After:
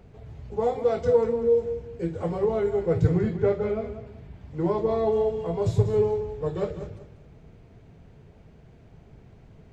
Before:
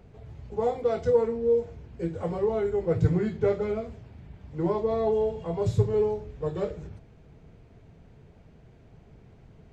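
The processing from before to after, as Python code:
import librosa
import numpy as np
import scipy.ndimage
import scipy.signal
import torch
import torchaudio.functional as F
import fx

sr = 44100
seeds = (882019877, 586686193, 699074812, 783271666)

y = fx.high_shelf(x, sr, hz=4600.0, db=-9.5, at=(3.19, 4.07))
y = fx.echo_feedback(y, sr, ms=191, feedback_pct=27, wet_db=-11)
y = F.gain(torch.from_numpy(y), 1.5).numpy()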